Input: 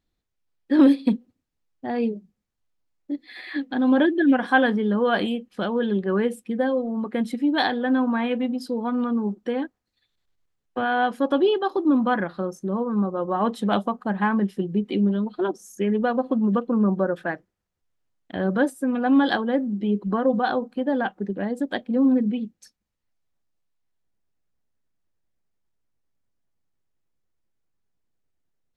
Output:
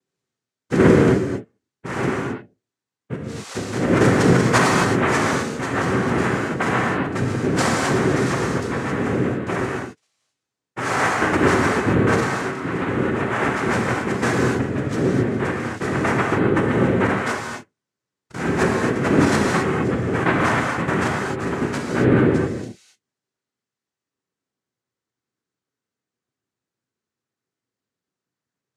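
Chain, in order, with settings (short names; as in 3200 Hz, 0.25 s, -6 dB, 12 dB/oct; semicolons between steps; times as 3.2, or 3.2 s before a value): noise vocoder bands 3; non-linear reverb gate 0.29 s flat, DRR -2 dB; gain -1 dB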